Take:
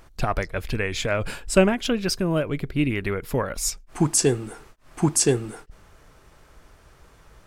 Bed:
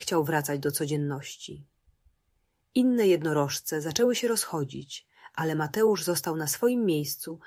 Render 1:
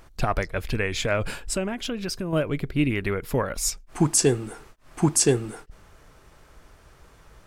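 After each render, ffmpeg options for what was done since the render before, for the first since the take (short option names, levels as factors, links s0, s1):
-filter_complex "[0:a]asettb=1/sr,asplit=3[s0][s1][s2];[s0]atrim=end=1.534[s3];[s1]atrim=start=1.53:end=2.33,asetpts=PTS-STARTPTS,afade=t=in:d=0.004:c=qsin,afade=t=out:st=0.796:d=0.004:c=qsin,acompressor=threshold=0.0398:ratio=2.5:attack=3.2:release=140:knee=1:detection=peak[s4];[s2]atrim=start=2.326[s5];[s3][s4]acrossfade=d=0.004:c1=hsin:c2=qsin[s6];[s6][s5]acrossfade=d=0.004:c1=qsin:c2=hsin"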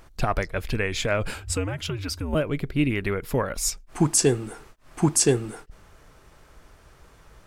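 -filter_complex "[0:a]asettb=1/sr,asplit=3[s0][s1][s2];[s0]atrim=end=1.344[s3];[s1]atrim=start=1.34:end=2.35,asetpts=PTS-STARTPTS,afade=t=in:d=0.004:c=qsin,afade=t=out:st=1.006:d=0.004:c=qsin,afreqshift=-100[s4];[s2]atrim=start=2.346[s5];[s3][s4]acrossfade=d=0.004:c1=hsin:c2=qsin[s6];[s6][s5]acrossfade=d=0.004:c1=qsin:c2=hsin"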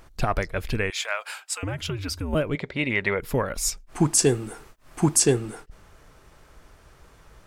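-filter_complex "[0:a]asettb=1/sr,asplit=3[s0][s1][s2];[s0]atrim=end=0.904[s3];[s1]atrim=start=0.9:end=1.63,asetpts=PTS-STARTPTS,afade=t=in:d=0.004:c=qsin,afade=t=out:st=0.726:d=0.004:c=qsin,highpass=f=770:w=0.5412,highpass=f=770:w=1.3066[s4];[s2]atrim=start=1.626[s5];[s3][s4]acrossfade=d=0.004:c1=hsin:c2=qsin[s6];[s6][s5]acrossfade=d=0.004:c1=qsin:c2=hsin,asettb=1/sr,asplit=3[s7][s8][s9];[s7]atrim=end=2.554[s10];[s8]atrim=start=2.55:end=3.19,asetpts=PTS-STARTPTS,afade=t=in:d=0.004:c=qsin,afade=t=out:st=0.636:d=0.004:c=qsin,highpass=110,equalizer=f=140:t=q:w=4:g=-7,equalizer=f=300:t=q:w=4:g=-8,equalizer=f=560:t=q:w=4:g=9,equalizer=f=910:t=q:w=4:g=9,equalizer=f=2000:t=q:w=4:g=9,equalizer=f=3700:t=q:w=4:g=6,lowpass=f=7700:w=0.5412,lowpass=f=7700:w=1.3066[s11];[s9]atrim=start=3.186[s12];[s10][s11]acrossfade=d=0.004:c1=hsin:c2=qsin[s13];[s13][s12]acrossfade=d=0.004:c1=qsin:c2=hsin,asettb=1/sr,asplit=3[s14][s15][s16];[s14]atrim=end=4.184[s17];[s15]atrim=start=4.18:end=5.2,asetpts=PTS-STARTPTS,afade=t=in:d=0.004:c=qsin,afade=t=out:st=1.016:d=0.004:c=qsin,highshelf=f=11000:g=6[s18];[s16]atrim=start=5.196[s19];[s17][s18]acrossfade=d=0.004:c1=hsin:c2=qsin[s20];[s20][s19]acrossfade=d=0.004:c1=qsin:c2=hsin"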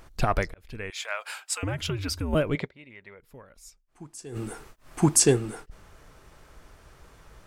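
-filter_complex "[0:a]asplit=4[s0][s1][s2][s3];[s0]atrim=end=0.54,asetpts=PTS-STARTPTS,afade=t=out:st=0.536:d=0.004:c=hsin[s4];[s1]atrim=start=0.54:end=2.88,asetpts=PTS-STARTPTS,afade=t=in:d=0.92,afade=t=out:st=2.11:d=0.23:c=exp:silence=0.0668344[s5];[s2]atrim=start=2.88:end=4.14,asetpts=PTS-STARTPTS,volume=0.0668[s6];[s3]atrim=start=4.14,asetpts=PTS-STARTPTS,afade=t=in:d=0.23:c=exp:silence=0.0668344[s7];[s4][s5][s6][s7]concat=n=4:v=0:a=1"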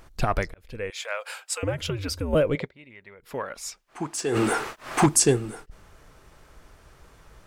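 -filter_complex "[0:a]asettb=1/sr,asplit=3[s0][s1][s2];[s0]atrim=end=0.644[s3];[s1]atrim=start=0.64:end=2.63,asetpts=PTS-STARTPTS,afade=t=in:d=0.004:c=qsin,afade=t=out:st=1.986:d=0.004:c=qsin,equalizer=f=510:w=5.2:g=12.5[s4];[s2]atrim=start=2.626[s5];[s3][s4]acrossfade=d=0.004:c1=hsin:c2=qsin[s6];[s6][s5]acrossfade=d=0.004:c1=qsin:c2=hsin,asplit=3[s7][s8][s9];[s7]afade=t=out:st=3.25:d=0.02[s10];[s8]asplit=2[s11][s12];[s12]highpass=f=720:p=1,volume=25.1,asoftclip=type=tanh:threshold=0.355[s13];[s11][s13]amix=inputs=2:normalize=0,lowpass=f=2800:p=1,volume=0.501,afade=t=in:st=3.25:d=0.02,afade=t=out:st=5.05:d=0.02[s14];[s9]afade=t=in:st=5.05:d=0.02[s15];[s10][s14][s15]amix=inputs=3:normalize=0"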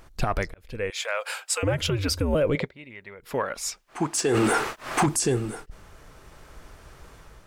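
-af "dynaudnorm=f=550:g=3:m=1.78,alimiter=limit=0.188:level=0:latency=1:release=35"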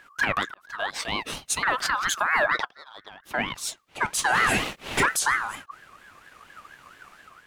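-filter_complex "[0:a]asplit=2[s0][s1];[s1]aeval=exprs='sgn(val(0))*max(abs(val(0))-0.00944,0)':c=same,volume=0.398[s2];[s0][s2]amix=inputs=2:normalize=0,aeval=exprs='val(0)*sin(2*PI*1400*n/s+1400*0.2/4.3*sin(2*PI*4.3*n/s))':c=same"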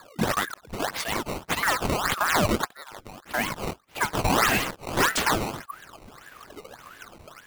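-filter_complex "[0:a]asplit=2[s0][s1];[s1]aeval=exprs='(mod(21.1*val(0)+1,2)-1)/21.1':c=same,volume=0.501[s2];[s0][s2]amix=inputs=2:normalize=0,acrusher=samples=15:mix=1:aa=0.000001:lfo=1:lforange=24:lforate=1.7"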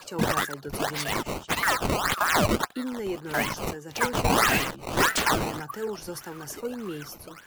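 -filter_complex "[1:a]volume=0.335[s0];[0:a][s0]amix=inputs=2:normalize=0"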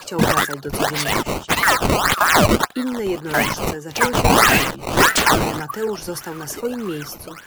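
-af "volume=2.66,alimiter=limit=0.708:level=0:latency=1"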